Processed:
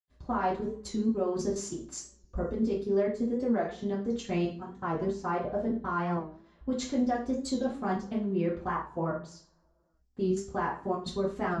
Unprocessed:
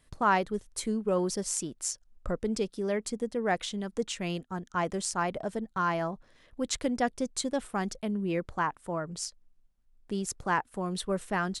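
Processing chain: 4.67–6.13 s: treble shelf 6.7 kHz -10.5 dB; hum notches 60/120/180/240/300 Hz; level held to a coarse grid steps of 17 dB; reverberation RT60 0.45 s, pre-delay 76 ms; warped record 45 rpm, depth 100 cents

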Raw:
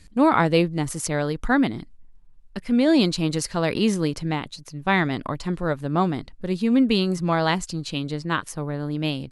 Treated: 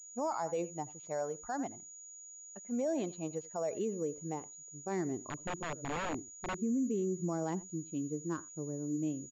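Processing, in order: expander on every frequency bin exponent 1.5; on a send: delay 85 ms -21 dB; on the sum: band-pass sweep 750 Hz -> 330 Hz, 3.08–5.48 s; in parallel at +3 dB: compression 12:1, threshold -33 dBFS, peak gain reduction 15 dB; on the sum: peak limiter -22 dBFS, peak gain reduction 10 dB; 5.28–6.62 s: integer overflow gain 26 dB; class-D stage that switches slowly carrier 6.8 kHz; trim -5 dB

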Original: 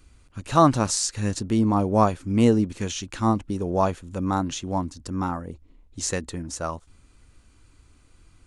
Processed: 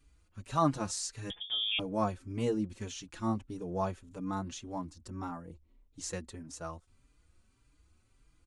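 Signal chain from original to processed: 1.30–1.79 s: frequency inversion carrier 3.5 kHz; endless flanger 4.6 ms +1.7 Hz; trim -9 dB

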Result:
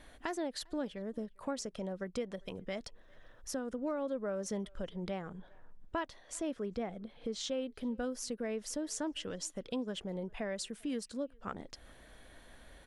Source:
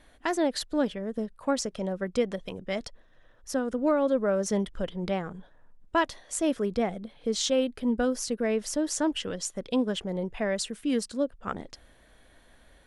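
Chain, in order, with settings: 5.34–7.68 s: treble shelf 7.4 kHz -11 dB; compression 2:1, threshold -46 dBFS, peak gain reduction 14 dB; speakerphone echo 400 ms, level -27 dB; trim +1.5 dB

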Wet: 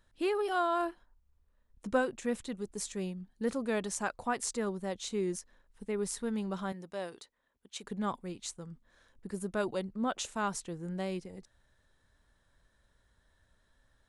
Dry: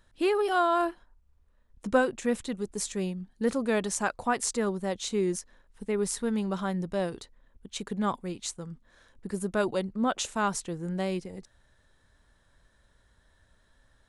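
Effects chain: 6.72–7.84 s: high-pass 550 Hz 6 dB/octave; trim -5.5 dB

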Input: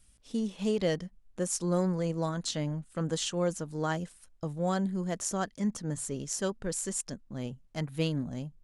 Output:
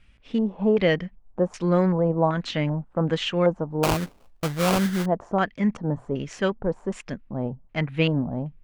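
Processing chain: LFO low-pass square 1.3 Hz 870–2400 Hz; 3.83–5.06 s: sample-rate reducer 1.8 kHz, jitter 20%; trim +7.5 dB

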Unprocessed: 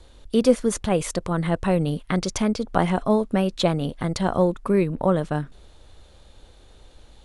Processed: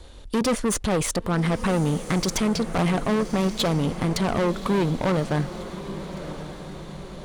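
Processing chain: valve stage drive 26 dB, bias 0.45; echo that smears into a reverb 1155 ms, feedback 52%, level -12 dB; trim +7 dB

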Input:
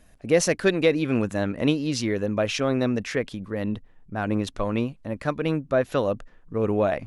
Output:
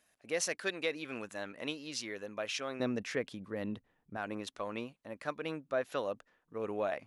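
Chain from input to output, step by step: high-pass 1.1 kHz 6 dB/octave, from 2.80 s 200 Hz, from 4.17 s 620 Hz; trim -8 dB

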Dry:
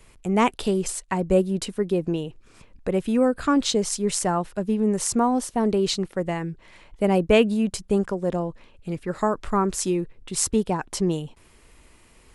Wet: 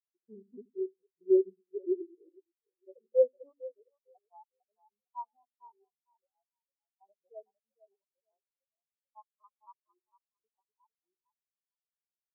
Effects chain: time reversed locally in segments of 143 ms; band-pass sweep 340 Hz -> 1 kHz, 1.70–4.65 s; on a send: two-band feedback delay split 400 Hz, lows 81 ms, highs 454 ms, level -4 dB; on the sum: spectral contrast expander 4:1

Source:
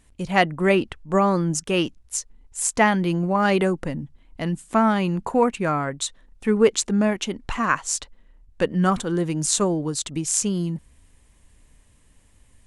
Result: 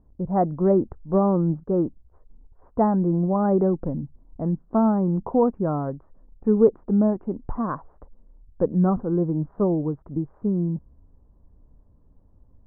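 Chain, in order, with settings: Bessel low-pass 650 Hz, order 8; trim +1.5 dB

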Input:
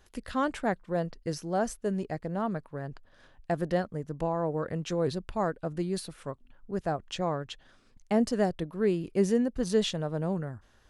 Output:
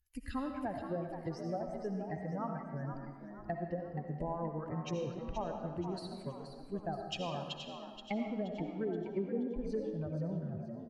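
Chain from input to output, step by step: expander on every frequency bin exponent 2; low-pass that closes with the level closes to 570 Hz, closed at -27.5 dBFS; compression 4:1, threshold -48 dBFS, peak gain reduction 21.5 dB; frequency-shifting echo 476 ms, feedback 41%, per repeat +67 Hz, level -9 dB; on a send at -4 dB: reverberation RT60 1.3 s, pre-delay 40 ms; on the sum: trim +9.5 dB

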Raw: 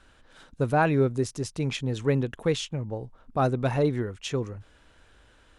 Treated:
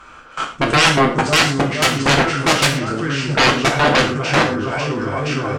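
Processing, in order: spectral sustain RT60 0.32 s; in parallel at -2 dB: compression 10:1, threshold -32 dBFS, peak gain reduction 15 dB; on the sum: formant shift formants -3 st; peaking EQ 1.3 kHz +9 dB 1.2 oct; bouncing-ball echo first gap 550 ms, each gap 0.85×, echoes 5; level held to a coarse grid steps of 20 dB; sine folder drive 16 dB, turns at -8.5 dBFS; bass shelf 83 Hz -9 dB; gated-style reverb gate 150 ms falling, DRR 0.5 dB; trim -2.5 dB

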